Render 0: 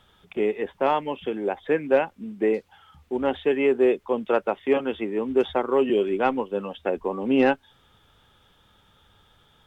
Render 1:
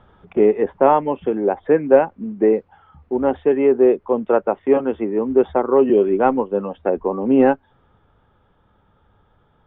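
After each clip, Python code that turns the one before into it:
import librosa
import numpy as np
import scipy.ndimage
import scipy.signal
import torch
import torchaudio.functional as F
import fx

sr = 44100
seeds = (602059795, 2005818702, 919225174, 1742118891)

y = scipy.signal.sosfilt(scipy.signal.butter(2, 1200.0, 'lowpass', fs=sr, output='sos'), x)
y = fx.rider(y, sr, range_db=5, speed_s=2.0)
y = y * librosa.db_to_amplitude(6.5)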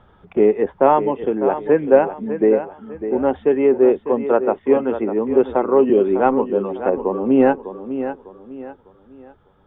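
y = fx.echo_feedback(x, sr, ms=601, feedback_pct=34, wet_db=-10.5)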